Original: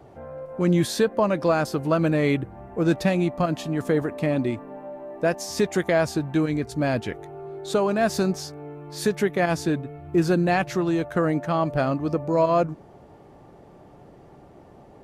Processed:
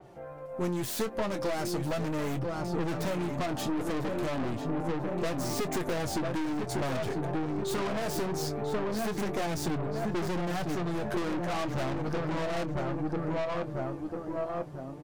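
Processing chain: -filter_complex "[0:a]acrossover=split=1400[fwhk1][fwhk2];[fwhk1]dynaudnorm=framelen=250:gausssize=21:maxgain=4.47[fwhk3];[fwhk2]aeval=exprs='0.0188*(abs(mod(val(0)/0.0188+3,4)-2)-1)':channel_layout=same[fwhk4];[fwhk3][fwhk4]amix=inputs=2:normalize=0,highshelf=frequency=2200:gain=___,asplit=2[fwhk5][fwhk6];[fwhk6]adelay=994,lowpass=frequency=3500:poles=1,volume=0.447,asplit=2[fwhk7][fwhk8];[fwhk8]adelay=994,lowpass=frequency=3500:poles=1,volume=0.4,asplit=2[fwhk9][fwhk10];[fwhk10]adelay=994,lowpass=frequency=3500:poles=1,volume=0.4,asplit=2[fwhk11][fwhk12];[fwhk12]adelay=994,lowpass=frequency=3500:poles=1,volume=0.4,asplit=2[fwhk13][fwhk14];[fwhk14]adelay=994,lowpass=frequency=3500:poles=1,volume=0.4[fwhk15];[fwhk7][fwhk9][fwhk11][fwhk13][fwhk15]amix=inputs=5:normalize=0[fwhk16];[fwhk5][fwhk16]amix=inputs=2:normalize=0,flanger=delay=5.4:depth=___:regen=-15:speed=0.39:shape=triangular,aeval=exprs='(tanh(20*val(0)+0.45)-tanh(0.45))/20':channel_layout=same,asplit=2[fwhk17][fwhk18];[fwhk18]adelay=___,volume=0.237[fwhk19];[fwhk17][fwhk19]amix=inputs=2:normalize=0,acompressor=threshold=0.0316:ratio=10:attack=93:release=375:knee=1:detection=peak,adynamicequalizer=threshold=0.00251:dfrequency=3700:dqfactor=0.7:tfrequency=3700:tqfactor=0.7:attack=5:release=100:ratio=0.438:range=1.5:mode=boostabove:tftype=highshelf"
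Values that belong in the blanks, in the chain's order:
7.5, 4.5, 23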